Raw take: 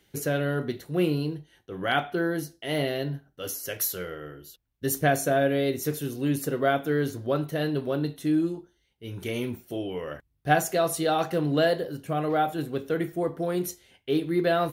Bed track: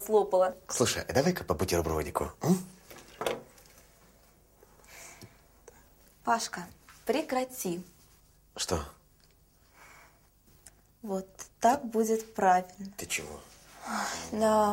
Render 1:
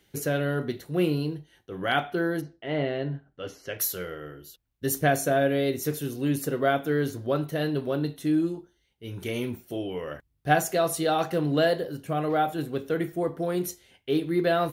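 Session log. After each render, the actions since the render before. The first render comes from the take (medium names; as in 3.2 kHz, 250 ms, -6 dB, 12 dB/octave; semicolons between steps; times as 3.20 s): 2.40–3.78 s: low-pass 1.9 kHz -> 3.4 kHz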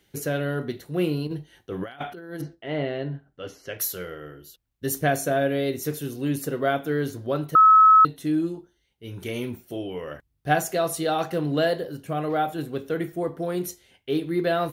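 1.27–2.55 s: compressor with a negative ratio -32 dBFS, ratio -0.5; 7.55–8.05 s: bleep 1.29 kHz -10 dBFS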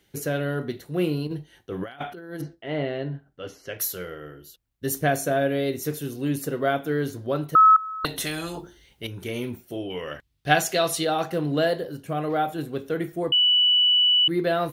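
7.76–9.07 s: spectrum-flattening compressor 4:1; 9.90–11.05 s: peaking EQ 3.5 kHz +10 dB 1.9 oct; 13.32–14.28 s: bleep 2.96 kHz -15.5 dBFS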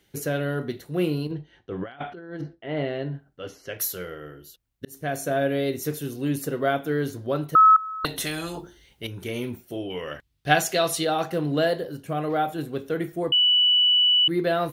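1.31–2.77 s: distance through air 170 m; 4.85–5.60 s: fade in equal-power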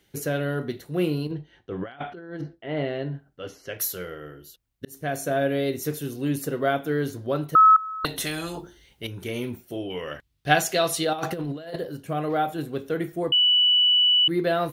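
11.13–11.76 s: compressor with a negative ratio -29 dBFS, ratio -0.5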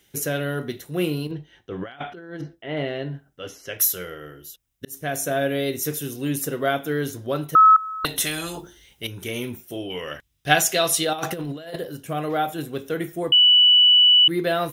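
treble shelf 2.5 kHz +8.5 dB; band-stop 4.4 kHz, Q 6.7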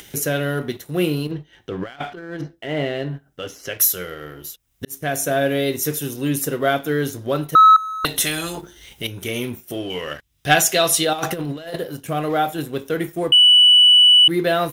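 upward compressor, threshold -30 dBFS; waveshaping leveller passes 1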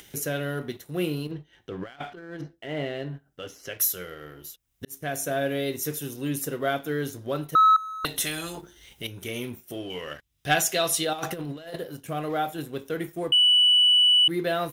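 trim -7.5 dB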